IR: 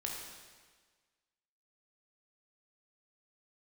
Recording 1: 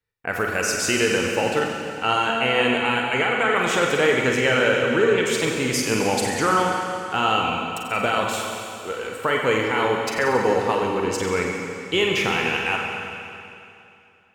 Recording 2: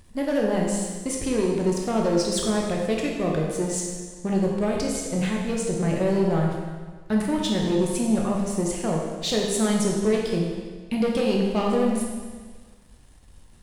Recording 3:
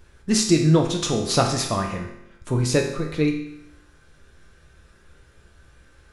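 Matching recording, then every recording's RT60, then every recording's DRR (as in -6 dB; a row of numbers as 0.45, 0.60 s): 2; 2.7, 1.5, 0.80 s; -0.5, -1.5, 1.0 dB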